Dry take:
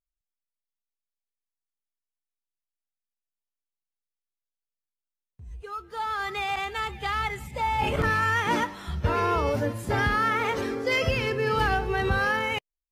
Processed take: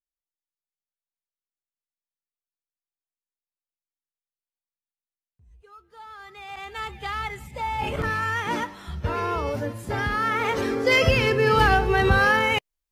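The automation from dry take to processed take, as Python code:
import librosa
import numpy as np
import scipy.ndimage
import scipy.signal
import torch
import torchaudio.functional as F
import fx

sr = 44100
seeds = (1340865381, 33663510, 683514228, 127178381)

y = fx.gain(x, sr, db=fx.line((6.36, -13.0), (6.82, -2.0), (10.05, -2.0), (10.87, 6.0)))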